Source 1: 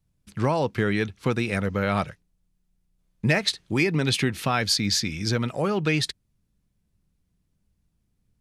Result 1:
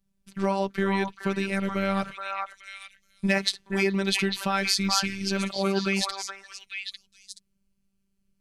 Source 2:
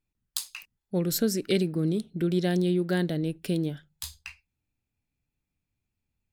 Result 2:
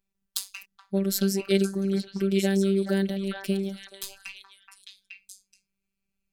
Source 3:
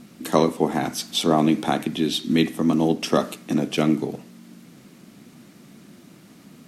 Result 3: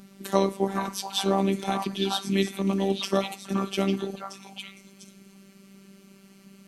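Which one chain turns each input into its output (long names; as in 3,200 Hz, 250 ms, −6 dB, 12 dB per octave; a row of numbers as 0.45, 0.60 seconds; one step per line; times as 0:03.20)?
phases set to zero 195 Hz
echo through a band-pass that steps 425 ms, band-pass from 1,100 Hz, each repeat 1.4 octaves, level −0.5 dB
loudness normalisation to −27 LKFS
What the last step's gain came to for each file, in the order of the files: +0.5, +3.0, −2.5 decibels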